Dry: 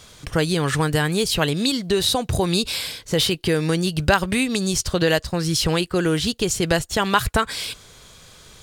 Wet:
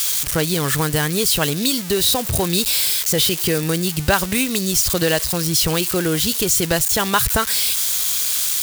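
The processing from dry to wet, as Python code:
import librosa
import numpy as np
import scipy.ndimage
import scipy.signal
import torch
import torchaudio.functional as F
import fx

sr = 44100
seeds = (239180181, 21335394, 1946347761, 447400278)

y = x + 0.5 * 10.0 ** (-13.0 / 20.0) * np.diff(np.sign(x), prepend=np.sign(x[:1]))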